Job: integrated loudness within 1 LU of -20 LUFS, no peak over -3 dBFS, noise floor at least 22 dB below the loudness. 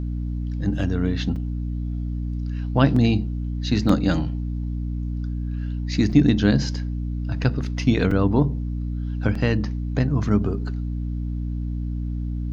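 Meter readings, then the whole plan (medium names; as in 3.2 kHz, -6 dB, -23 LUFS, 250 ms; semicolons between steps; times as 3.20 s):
dropouts 6; longest dropout 3.9 ms; hum 60 Hz; highest harmonic 300 Hz; hum level -24 dBFS; loudness -24.0 LUFS; peak level -4.0 dBFS; loudness target -20.0 LUFS
-> interpolate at 1.36/2.96/3.89/6.12/8.11/9.35 s, 3.9 ms; hum notches 60/120/180/240/300 Hz; trim +4 dB; peak limiter -3 dBFS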